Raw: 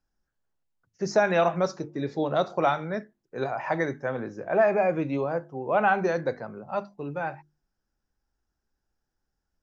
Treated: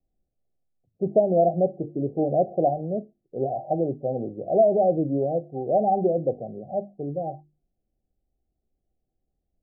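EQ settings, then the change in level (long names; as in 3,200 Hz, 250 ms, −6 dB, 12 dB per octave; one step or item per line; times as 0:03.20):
Chebyshev low-pass filter 780 Hz, order 10
+4.0 dB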